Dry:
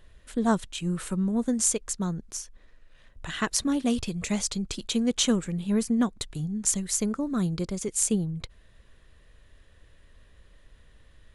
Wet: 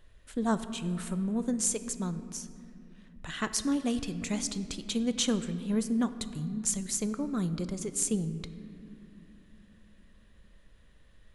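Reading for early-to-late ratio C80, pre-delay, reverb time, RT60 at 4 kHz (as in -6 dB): 13.5 dB, 4 ms, 2.8 s, 1.5 s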